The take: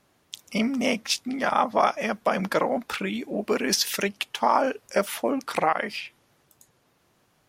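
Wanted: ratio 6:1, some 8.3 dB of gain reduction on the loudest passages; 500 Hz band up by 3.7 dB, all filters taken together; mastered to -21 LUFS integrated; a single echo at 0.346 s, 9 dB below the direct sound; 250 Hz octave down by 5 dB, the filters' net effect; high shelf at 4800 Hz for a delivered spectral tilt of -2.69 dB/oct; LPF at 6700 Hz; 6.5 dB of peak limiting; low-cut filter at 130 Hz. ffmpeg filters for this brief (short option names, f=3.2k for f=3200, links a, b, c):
-af "highpass=130,lowpass=6.7k,equalizer=f=250:t=o:g=-7,equalizer=f=500:t=o:g=6,highshelf=f=4.8k:g=4,acompressor=threshold=-23dB:ratio=6,alimiter=limit=-17dB:level=0:latency=1,aecho=1:1:346:0.355,volume=9dB"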